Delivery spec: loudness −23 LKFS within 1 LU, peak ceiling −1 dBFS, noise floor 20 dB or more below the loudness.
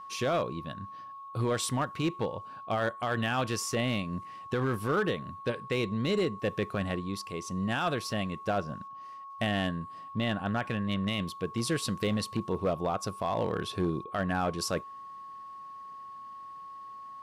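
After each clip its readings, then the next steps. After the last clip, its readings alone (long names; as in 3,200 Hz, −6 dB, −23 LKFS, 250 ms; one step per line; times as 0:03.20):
share of clipped samples 1.0%; peaks flattened at −22.0 dBFS; interfering tone 1,100 Hz; level of the tone −42 dBFS; integrated loudness −32.0 LKFS; sample peak −22.0 dBFS; target loudness −23.0 LKFS
→ clipped peaks rebuilt −22 dBFS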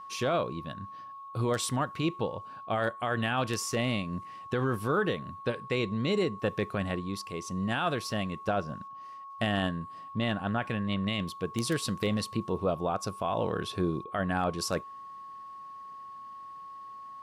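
share of clipped samples 0.0%; interfering tone 1,100 Hz; level of the tone −42 dBFS
→ notch filter 1,100 Hz, Q 30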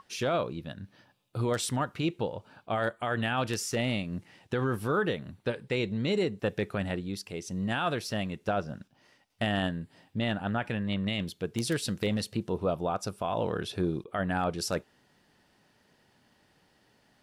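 interfering tone none found; integrated loudness −31.5 LKFS; sample peak −13.0 dBFS; target loudness −23.0 LKFS
→ level +8.5 dB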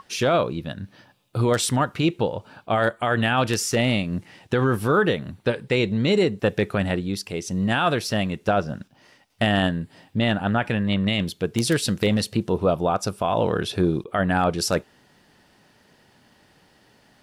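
integrated loudness −23.0 LKFS; sample peak −4.5 dBFS; background noise floor −59 dBFS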